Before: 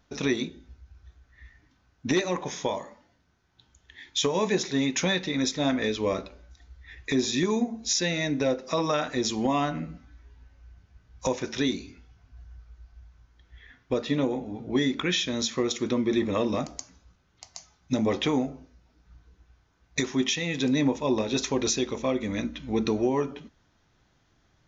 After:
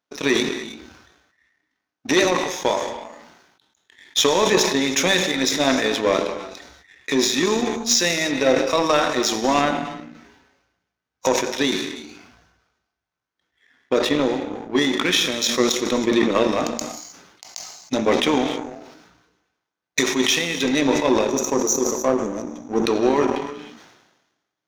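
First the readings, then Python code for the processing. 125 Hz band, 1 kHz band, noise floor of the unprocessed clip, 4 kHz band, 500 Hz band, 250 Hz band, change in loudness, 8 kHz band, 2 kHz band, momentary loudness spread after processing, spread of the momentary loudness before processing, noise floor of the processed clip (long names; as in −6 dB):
−1.0 dB, +9.5 dB, −67 dBFS, +8.5 dB, +8.0 dB, +4.5 dB, +7.0 dB, can't be measured, +9.5 dB, 14 LU, 9 LU, −83 dBFS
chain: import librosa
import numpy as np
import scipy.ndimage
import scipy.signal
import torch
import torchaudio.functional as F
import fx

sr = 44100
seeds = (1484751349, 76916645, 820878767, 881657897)

p1 = scipy.signal.sosfilt(scipy.signal.butter(2, 290.0, 'highpass', fs=sr, output='sos'), x)
p2 = fx.spec_box(p1, sr, start_s=21.27, length_s=1.57, low_hz=1300.0, high_hz=5600.0, gain_db=-22)
p3 = fx.rev_gated(p2, sr, seeds[0], gate_ms=340, shape='flat', drr_db=7.0)
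p4 = np.sign(p3) * np.maximum(np.abs(p3) - 10.0 ** (-43.0 / 20.0), 0.0)
p5 = p3 + F.gain(torch.from_numpy(p4), -7.5).numpy()
p6 = fx.power_curve(p5, sr, exponent=1.4)
p7 = fx.sustainer(p6, sr, db_per_s=50.0)
y = F.gain(torch.from_numpy(p7), 8.0).numpy()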